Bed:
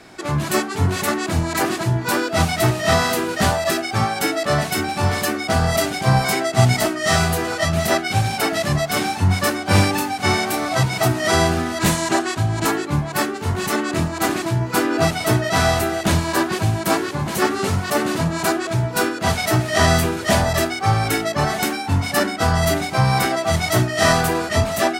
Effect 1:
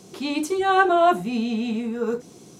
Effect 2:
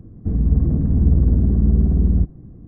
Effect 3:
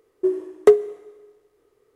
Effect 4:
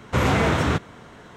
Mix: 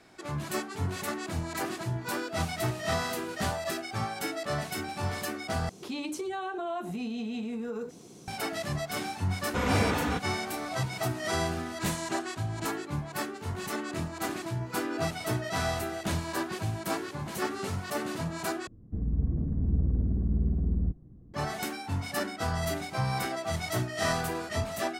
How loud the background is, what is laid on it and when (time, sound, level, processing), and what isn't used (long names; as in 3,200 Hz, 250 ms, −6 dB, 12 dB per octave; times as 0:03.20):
bed −13 dB
0:05.69: overwrite with 1 −4 dB + downward compressor 10 to 1, threshold −27 dBFS
0:09.41: mix in 4 −9.5 dB + comb filter 4.1 ms
0:18.67: overwrite with 2 −12 dB
not used: 3